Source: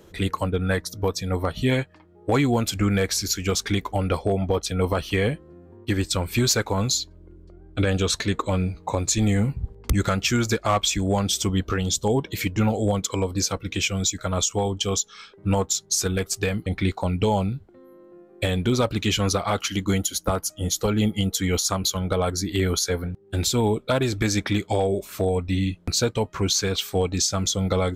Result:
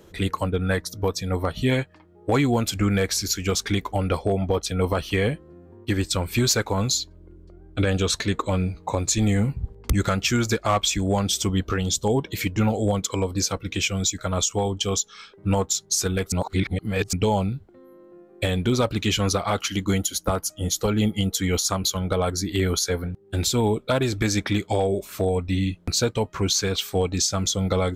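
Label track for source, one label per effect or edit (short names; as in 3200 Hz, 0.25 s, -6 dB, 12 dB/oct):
16.320000	17.130000	reverse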